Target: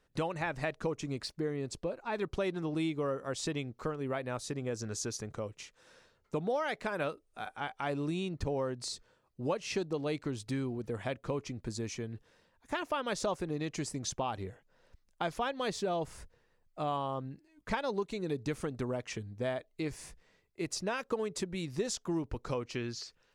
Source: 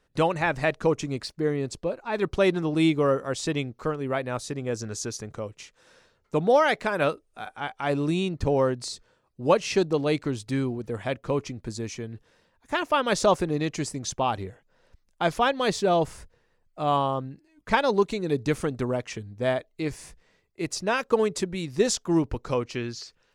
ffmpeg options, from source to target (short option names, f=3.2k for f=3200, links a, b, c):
-af "acompressor=threshold=-29dB:ratio=3,volume=-3.5dB"